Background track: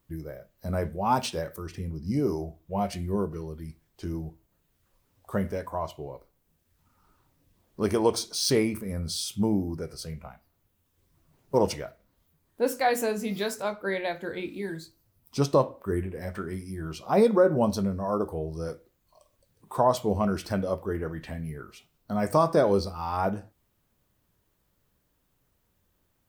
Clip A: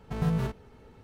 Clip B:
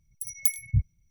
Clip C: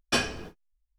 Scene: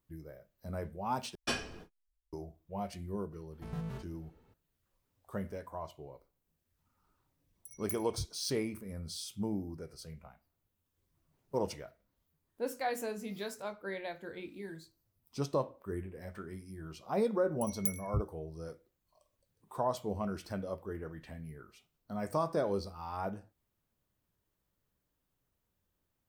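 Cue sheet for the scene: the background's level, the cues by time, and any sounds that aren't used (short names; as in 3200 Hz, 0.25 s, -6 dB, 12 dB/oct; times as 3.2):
background track -10.5 dB
1.35 replace with C -9 dB
3.51 add A -12.5 dB
7.44 add B -16.5 dB
17.4 add B -10 dB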